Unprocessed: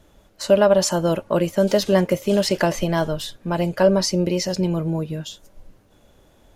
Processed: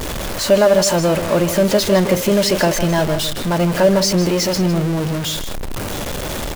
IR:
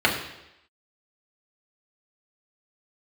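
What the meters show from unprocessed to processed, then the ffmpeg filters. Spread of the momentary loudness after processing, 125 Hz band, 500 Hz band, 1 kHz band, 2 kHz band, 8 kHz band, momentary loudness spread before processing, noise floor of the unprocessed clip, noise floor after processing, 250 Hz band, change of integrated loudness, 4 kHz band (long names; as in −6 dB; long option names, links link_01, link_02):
11 LU, +5.0 dB, +3.5 dB, +4.5 dB, +6.5 dB, +7.5 dB, 10 LU, −56 dBFS, −24 dBFS, +4.5 dB, +3.5 dB, +7.5 dB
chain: -filter_complex "[0:a]aeval=exprs='val(0)+0.5*0.106*sgn(val(0))':channel_layout=same,asplit=2[link_01][link_02];[link_02]adelay=157.4,volume=-10dB,highshelf=frequency=4000:gain=-3.54[link_03];[link_01][link_03]amix=inputs=2:normalize=0,volume=1dB"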